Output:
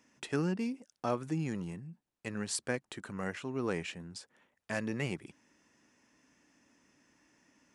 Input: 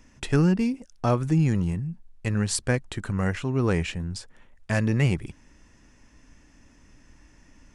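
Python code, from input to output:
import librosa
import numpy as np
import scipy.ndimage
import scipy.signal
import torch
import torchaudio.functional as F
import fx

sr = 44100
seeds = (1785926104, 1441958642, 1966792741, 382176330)

y = scipy.signal.sosfilt(scipy.signal.butter(2, 220.0, 'highpass', fs=sr, output='sos'), x)
y = F.gain(torch.from_numpy(y), -8.0).numpy()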